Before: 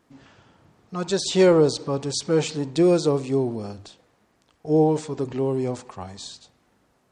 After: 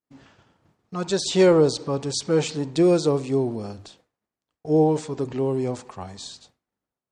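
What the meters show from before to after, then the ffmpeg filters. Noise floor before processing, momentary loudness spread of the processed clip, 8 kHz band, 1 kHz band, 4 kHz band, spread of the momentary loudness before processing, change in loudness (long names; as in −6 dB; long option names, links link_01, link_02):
−66 dBFS, 19 LU, 0.0 dB, 0.0 dB, 0.0 dB, 19 LU, 0.0 dB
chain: -af "agate=range=-33dB:threshold=-49dB:ratio=3:detection=peak"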